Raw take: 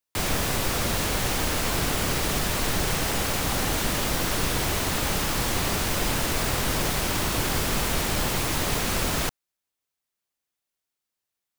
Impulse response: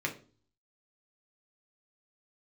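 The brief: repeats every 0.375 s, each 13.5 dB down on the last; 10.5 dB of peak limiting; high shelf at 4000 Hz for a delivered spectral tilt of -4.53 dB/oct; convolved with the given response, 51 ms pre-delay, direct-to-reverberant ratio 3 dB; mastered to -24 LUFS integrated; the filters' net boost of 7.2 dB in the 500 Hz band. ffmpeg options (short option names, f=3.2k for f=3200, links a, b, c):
-filter_complex "[0:a]equalizer=f=500:t=o:g=9,highshelf=f=4k:g=-5.5,alimiter=limit=-21dB:level=0:latency=1,aecho=1:1:375|750:0.211|0.0444,asplit=2[a][b];[1:a]atrim=start_sample=2205,adelay=51[c];[b][c]afir=irnorm=-1:irlink=0,volume=-9dB[d];[a][d]amix=inputs=2:normalize=0,volume=4.5dB"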